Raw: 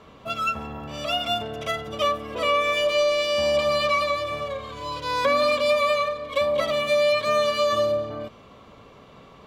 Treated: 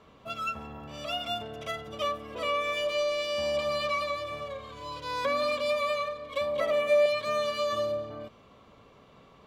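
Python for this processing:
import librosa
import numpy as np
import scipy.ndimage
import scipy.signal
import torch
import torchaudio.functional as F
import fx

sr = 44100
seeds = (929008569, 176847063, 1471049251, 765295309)

y = fx.graphic_eq(x, sr, hz=(125, 500, 2000, 4000), db=(-6, 8, 5, -7), at=(6.6, 7.06))
y = y * librosa.db_to_amplitude(-7.5)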